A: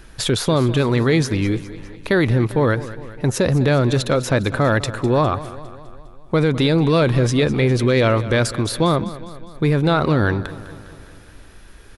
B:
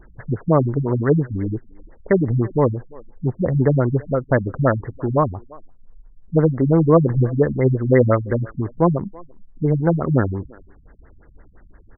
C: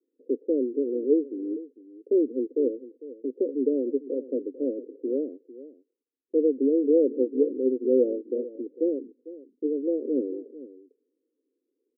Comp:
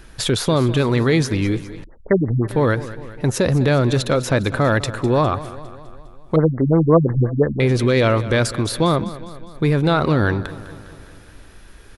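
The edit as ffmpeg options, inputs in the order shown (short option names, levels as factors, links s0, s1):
-filter_complex "[1:a]asplit=2[s0][s1];[0:a]asplit=3[s2][s3][s4];[s2]atrim=end=1.842[s5];[s0]atrim=start=1.838:end=2.482[s6];[s3]atrim=start=2.478:end=6.362[s7];[s1]atrim=start=6.358:end=7.602[s8];[s4]atrim=start=7.598[s9];[s5][s6]acrossfade=d=0.004:c1=hsin:c2=hsin[s10];[s10][s7]acrossfade=d=0.004:c1=hsin:c2=hsin[s11];[s11][s8]acrossfade=d=0.004:c1=hsin:c2=hsin[s12];[s12][s9]acrossfade=d=0.004:c1=hsin:c2=hsin"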